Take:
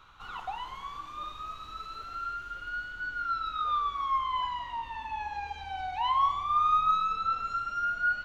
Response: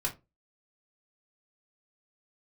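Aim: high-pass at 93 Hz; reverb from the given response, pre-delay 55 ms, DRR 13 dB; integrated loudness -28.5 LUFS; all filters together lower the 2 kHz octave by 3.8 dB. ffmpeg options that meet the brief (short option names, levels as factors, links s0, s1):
-filter_complex "[0:a]highpass=93,equalizer=f=2000:t=o:g=-7,asplit=2[s0][s1];[1:a]atrim=start_sample=2205,adelay=55[s2];[s1][s2]afir=irnorm=-1:irlink=0,volume=0.141[s3];[s0][s3]amix=inputs=2:normalize=0,volume=1.68"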